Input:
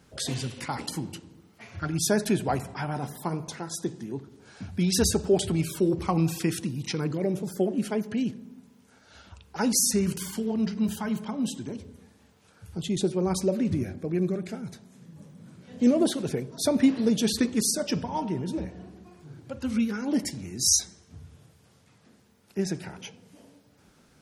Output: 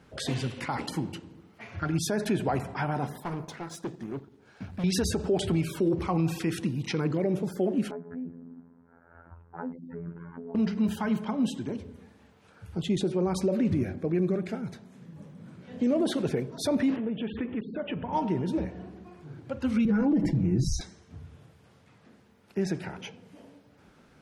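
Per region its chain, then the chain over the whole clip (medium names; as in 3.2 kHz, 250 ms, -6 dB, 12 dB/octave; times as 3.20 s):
3.20–4.84 s: companding laws mixed up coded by A + hard clipper -31.5 dBFS
7.91–10.55 s: steep low-pass 1.6 kHz + compression 2:1, threshold -42 dBFS + robot voice 84.6 Hz
16.96–18.13 s: steep low-pass 3.2 kHz 72 dB/octave + compression 3:1, threshold -33 dBFS
19.85–20.81 s: tilt EQ -4.5 dB/octave + comb 6.1 ms, depth 64%
whole clip: tone controls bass -2 dB, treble -11 dB; peak limiter -21 dBFS; trim +3 dB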